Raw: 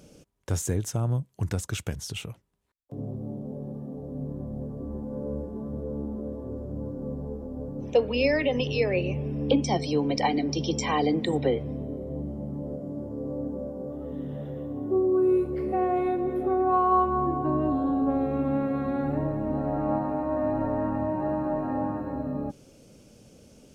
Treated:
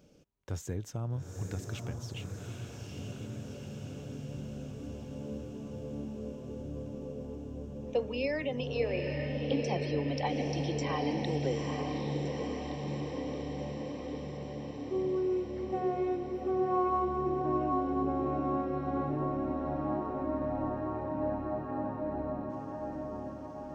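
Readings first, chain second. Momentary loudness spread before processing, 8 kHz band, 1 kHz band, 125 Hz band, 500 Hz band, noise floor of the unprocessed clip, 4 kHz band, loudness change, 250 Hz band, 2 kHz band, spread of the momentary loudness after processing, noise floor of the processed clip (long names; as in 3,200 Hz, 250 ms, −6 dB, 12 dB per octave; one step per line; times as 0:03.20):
12 LU, −11.0 dB, −6.5 dB, −5.5 dB, −6.0 dB, −54 dBFS, −7.5 dB, −6.5 dB, −7.0 dB, −7.0 dB, 11 LU, −44 dBFS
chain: parametric band 10,000 Hz −15 dB 0.6 octaves
on a send: feedback delay with all-pass diffusion 845 ms, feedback 70%, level −4 dB
on the sum: level −9 dB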